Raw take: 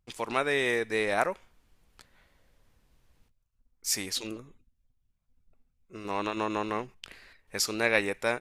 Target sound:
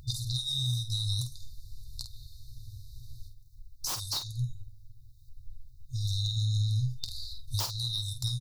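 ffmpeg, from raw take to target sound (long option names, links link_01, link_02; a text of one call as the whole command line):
ffmpeg -i in.wav -filter_complex "[0:a]flanger=delay=1.9:depth=8:regen=53:speed=0.53:shape=sinusoidal,afftfilt=real='re*(1-between(b*sr/4096,130,3600))':imag='im*(1-between(b*sr/4096,130,3600))':win_size=4096:overlap=0.75,aeval=exprs='0.237*sin(PI/2*8.91*val(0)/0.237)':channel_layout=same,acompressor=threshold=-32dB:ratio=8,equalizer=frequency=125:width_type=o:width=1:gain=8,equalizer=frequency=1000:width_type=o:width=1:gain=12,equalizer=frequency=2000:width_type=o:width=1:gain=-9,equalizer=frequency=4000:width_type=o:width=1:gain=4,equalizer=frequency=8000:width_type=o:width=1:gain=-6,asplit=2[link_01][link_02];[link_02]aecho=0:1:13|49:0.168|0.398[link_03];[link_01][link_03]amix=inputs=2:normalize=0,acompressor=mode=upward:threshold=-45dB:ratio=2.5" out.wav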